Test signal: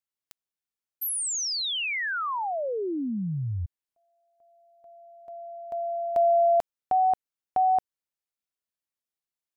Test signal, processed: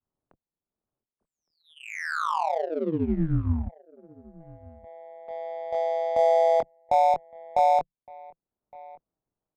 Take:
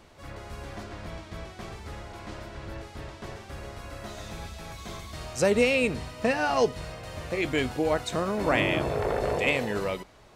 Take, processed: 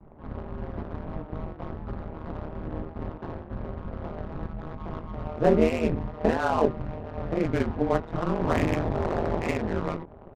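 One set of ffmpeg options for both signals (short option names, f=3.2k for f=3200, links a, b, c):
-filter_complex "[0:a]adynamicequalizer=threshold=0.0126:dfrequency=520:dqfactor=1.1:tfrequency=520:tqfactor=1.1:attack=5:release=100:ratio=0.375:range=3.5:mode=cutabove:tftype=bell,asplit=2[a][b];[b]asoftclip=type=tanh:threshold=-28dB,volume=-4dB[c];[a][c]amix=inputs=2:normalize=0,acompressor=mode=upward:threshold=-42dB:ratio=1.5:attack=1.2:release=446:knee=2.83:detection=peak,bandreject=f=530:w=12,afreqshift=-21,asplit=2[d][e];[e]adelay=23,volume=-4dB[f];[d][f]amix=inputs=2:normalize=0,tremolo=f=160:d=0.974,lowpass=1.2k,asplit=2[g][h];[h]aecho=0:1:1164:0.0708[i];[g][i]amix=inputs=2:normalize=0,adynamicsmooth=sensitivity=7.5:basefreq=770,volume=4.5dB"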